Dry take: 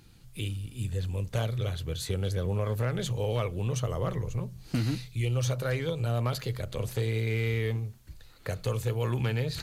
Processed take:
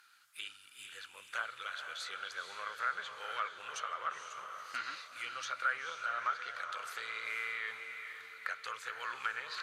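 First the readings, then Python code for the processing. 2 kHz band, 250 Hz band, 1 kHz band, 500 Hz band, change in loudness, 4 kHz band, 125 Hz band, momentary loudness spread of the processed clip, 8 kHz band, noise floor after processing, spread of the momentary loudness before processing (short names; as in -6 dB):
+3.5 dB, under -30 dB, +3.5 dB, -20.0 dB, -8.5 dB, -4.0 dB, under -40 dB, 10 LU, -8.0 dB, -59 dBFS, 7 LU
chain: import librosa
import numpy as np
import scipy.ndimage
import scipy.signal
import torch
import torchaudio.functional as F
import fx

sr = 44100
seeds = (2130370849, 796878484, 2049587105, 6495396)

y = fx.highpass_res(x, sr, hz=1400.0, q=5.6)
y = fx.env_lowpass_down(y, sr, base_hz=1800.0, full_db=-27.0)
y = fx.echo_diffused(y, sr, ms=475, feedback_pct=47, wet_db=-7.0)
y = F.gain(torch.from_numpy(y), -4.5).numpy()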